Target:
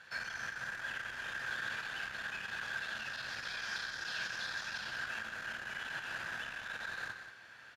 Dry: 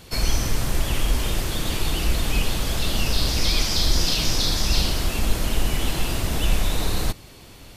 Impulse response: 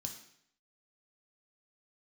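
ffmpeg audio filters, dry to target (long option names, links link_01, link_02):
-filter_complex "[0:a]acompressor=threshold=-22dB:ratio=2.5,volume=23dB,asoftclip=hard,volume=-23dB,bandpass=frequency=1600:width_type=q:width=11:csg=0,aecho=1:1:183:0.335,asplit=2[link_01][link_02];[1:a]atrim=start_sample=2205[link_03];[link_02][link_03]afir=irnorm=-1:irlink=0,volume=5.5dB[link_04];[link_01][link_04]amix=inputs=2:normalize=0,volume=5dB"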